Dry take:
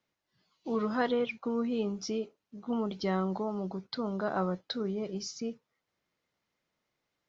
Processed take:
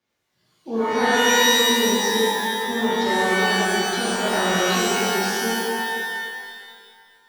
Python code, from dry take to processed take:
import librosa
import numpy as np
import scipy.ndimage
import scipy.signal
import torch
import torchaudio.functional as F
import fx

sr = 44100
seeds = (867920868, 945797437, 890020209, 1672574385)

y = fx.rev_shimmer(x, sr, seeds[0], rt60_s=2.0, semitones=12, shimmer_db=-2, drr_db=-9.0)